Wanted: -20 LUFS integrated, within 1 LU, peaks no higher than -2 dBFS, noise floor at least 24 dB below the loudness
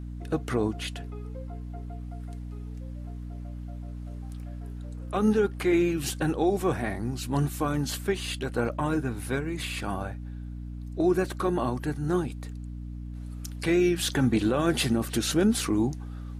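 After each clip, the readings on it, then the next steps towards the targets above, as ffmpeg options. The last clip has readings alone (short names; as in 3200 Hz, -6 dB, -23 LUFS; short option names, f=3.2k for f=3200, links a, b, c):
hum 60 Hz; harmonics up to 300 Hz; hum level -35 dBFS; loudness -27.5 LUFS; peak -13.0 dBFS; loudness target -20.0 LUFS
-> -af "bandreject=f=60:t=h:w=4,bandreject=f=120:t=h:w=4,bandreject=f=180:t=h:w=4,bandreject=f=240:t=h:w=4,bandreject=f=300:t=h:w=4"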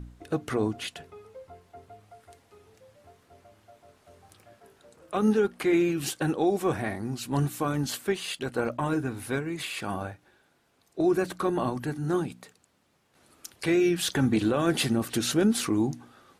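hum none; loudness -27.5 LUFS; peak -14.0 dBFS; loudness target -20.0 LUFS
-> -af "volume=7.5dB"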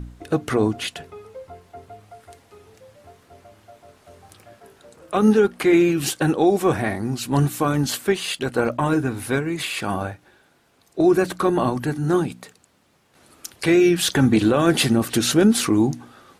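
loudness -20.0 LUFS; peak -6.5 dBFS; noise floor -60 dBFS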